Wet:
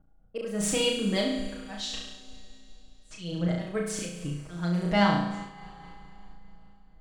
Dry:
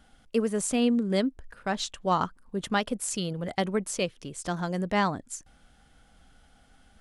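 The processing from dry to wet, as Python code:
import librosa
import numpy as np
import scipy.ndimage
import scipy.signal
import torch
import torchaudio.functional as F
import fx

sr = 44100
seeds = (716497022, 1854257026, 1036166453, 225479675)

p1 = scipy.ndimage.median_filter(x, 3, mode='constant')
p2 = fx.cheby2_bandstop(p1, sr, low_hz=130.0, high_hz=2000.0, order=4, stop_db=70, at=(1.99, 3.11))
p3 = fx.env_lowpass(p2, sr, base_hz=640.0, full_db=-25.5)
p4 = fx.low_shelf(p3, sr, hz=97.0, db=8.5)
p5 = p4 + 0.89 * np.pad(p4, (int(6.3 * sr / 1000.0), 0))[:len(p4)]
p6 = fx.dynamic_eq(p5, sr, hz=3400.0, q=0.87, threshold_db=-42.0, ratio=4.0, max_db=5)
p7 = fx.rider(p6, sr, range_db=10, speed_s=2.0)
p8 = p6 + (p7 * 10.0 ** (1.5 / 20.0))
p9 = fx.auto_swell(p8, sr, attack_ms=260.0)
p10 = fx.dmg_crackle(p9, sr, seeds[0], per_s=290.0, level_db=-51.0, at=(4.31, 4.95), fade=0.02)
p11 = p10 + fx.room_flutter(p10, sr, wall_m=5.9, rt60_s=0.78, dry=0)
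p12 = fx.rev_schroeder(p11, sr, rt60_s=3.3, comb_ms=27, drr_db=13.0)
p13 = fx.am_noise(p12, sr, seeds[1], hz=5.7, depth_pct=55)
y = p13 * 10.0 ** (-8.0 / 20.0)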